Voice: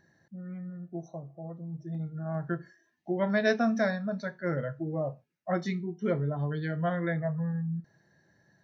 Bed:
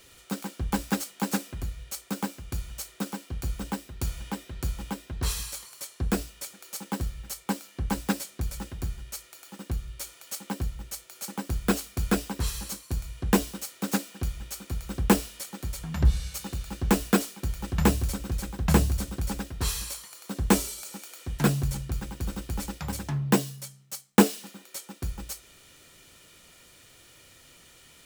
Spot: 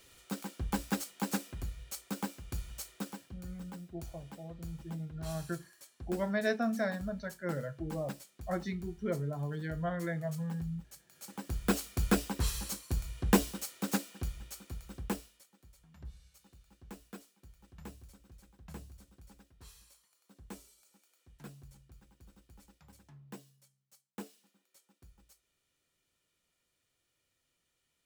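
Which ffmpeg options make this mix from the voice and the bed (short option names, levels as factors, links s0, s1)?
-filter_complex "[0:a]adelay=3000,volume=0.531[s0];[1:a]volume=2.37,afade=t=out:st=2.9:d=0.53:silence=0.298538,afade=t=in:st=11.08:d=0.84:silence=0.211349,afade=t=out:st=13.48:d=2:silence=0.0668344[s1];[s0][s1]amix=inputs=2:normalize=0"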